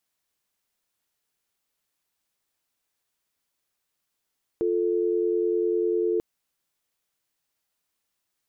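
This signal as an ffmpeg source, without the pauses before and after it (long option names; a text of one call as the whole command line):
ffmpeg -f lavfi -i "aevalsrc='0.0631*(sin(2*PI*350*t)+sin(2*PI*440*t))':duration=1.59:sample_rate=44100" out.wav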